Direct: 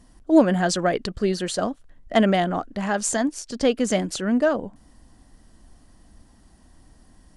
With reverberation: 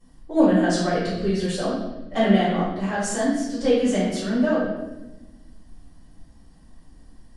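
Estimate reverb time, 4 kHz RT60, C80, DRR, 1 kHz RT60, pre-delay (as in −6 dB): 1.0 s, 0.85 s, 3.5 dB, −13.5 dB, 0.85 s, 4 ms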